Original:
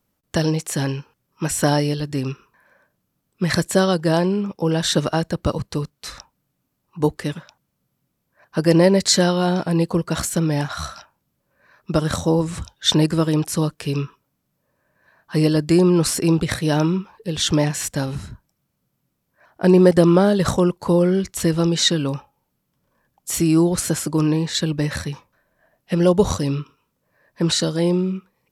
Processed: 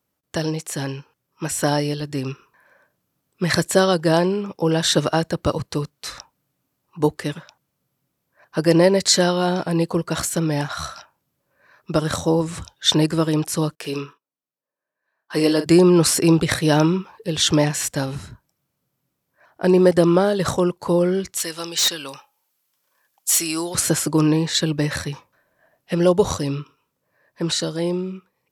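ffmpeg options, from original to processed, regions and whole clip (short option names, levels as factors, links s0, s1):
-filter_complex "[0:a]asettb=1/sr,asplit=3[s0][s1][s2];[s0]atrim=end=13.754[s3];[s1]atrim=start=13.75:end=15.66,asetpts=PTS-STARTPTS,afade=t=in:d=0.004:c=qsin,afade=t=out:st=1.906:d=0.004:c=qsin,agate=range=0.1:threshold=0.00398:ratio=16:release=100:detection=peak,highpass=260,asplit=2[s4][s5];[s5]adelay=43,volume=0.299[s6];[s4][s6]amix=inputs=2:normalize=0,atrim=end_sample=84231[s7];[s2]atrim=start=15.656[s8];[s3][s7]acrossfade=d=0.004:c1=hsin:c2=qsin[s9];[s9][s8]acrossfade=d=0.004:c1=qsin:c2=hsin,asettb=1/sr,asplit=3[s10][s11][s12];[s10]atrim=end=21.374[s13];[s11]atrim=start=21.37:end=23.75,asetpts=PTS-STARTPTS,afade=t=in:d=0.004:c=qsin,afade=t=out:st=2.376:d=0.004:c=qsin,highpass=f=1500:p=1,highshelf=f=3100:g=5.5,asoftclip=type=hard:threshold=0.158[s14];[s12]atrim=start=23.746[s15];[s13][s14]acrossfade=d=0.004:c1=hsin:c2=qsin[s16];[s16][s15]acrossfade=d=0.004:c1=qsin:c2=hsin,highpass=f=120:p=1,equalizer=f=210:w=4.1:g=-6,dynaudnorm=f=140:g=31:m=3.76,volume=0.75"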